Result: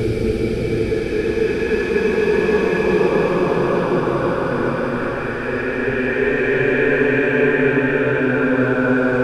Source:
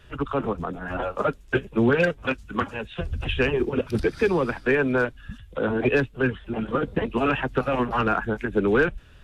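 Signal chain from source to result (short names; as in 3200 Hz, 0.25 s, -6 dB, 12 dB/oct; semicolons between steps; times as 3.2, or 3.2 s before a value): spectral repair 3.64–4.1, 900–2000 Hz; Paulstretch 9.3×, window 0.50 s, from 3.98; gain +5 dB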